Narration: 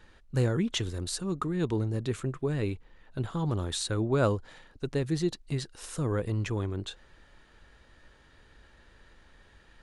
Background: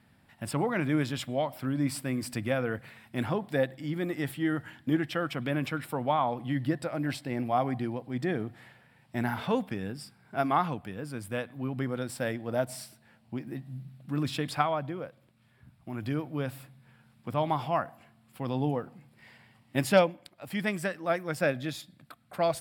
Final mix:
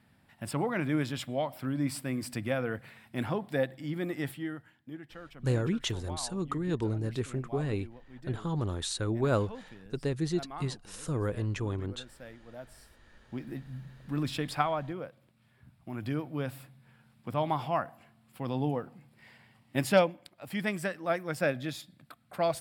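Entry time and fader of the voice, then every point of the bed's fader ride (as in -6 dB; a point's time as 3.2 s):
5.10 s, -2.0 dB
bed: 4.27 s -2 dB
4.75 s -16.5 dB
12.77 s -16.5 dB
13.41 s -1.5 dB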